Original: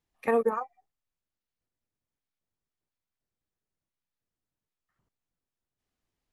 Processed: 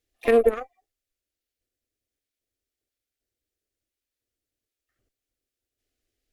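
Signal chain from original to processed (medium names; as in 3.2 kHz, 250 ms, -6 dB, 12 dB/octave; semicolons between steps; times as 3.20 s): Chebyshev shaper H 2 -10 dB, 7 -32 dB, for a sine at -13 dBFS; static phaser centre 400 Hz, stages 4; harmony voices +7 st -17 dB; trim +7.5 dB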